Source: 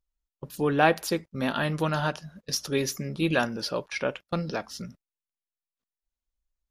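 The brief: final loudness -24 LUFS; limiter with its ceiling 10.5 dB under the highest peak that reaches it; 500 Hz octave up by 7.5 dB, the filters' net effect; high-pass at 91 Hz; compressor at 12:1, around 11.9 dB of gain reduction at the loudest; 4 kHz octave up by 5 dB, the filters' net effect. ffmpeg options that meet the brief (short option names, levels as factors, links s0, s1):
-af "highpass=91,equalizer=f=500:t=o:g=9,equalizer=f=4000:t=o:g=6.5,acompressor=threshold=0.0794:ratio=12,volume=2.66,alimiter=limit=0.237:level=0:latency=1"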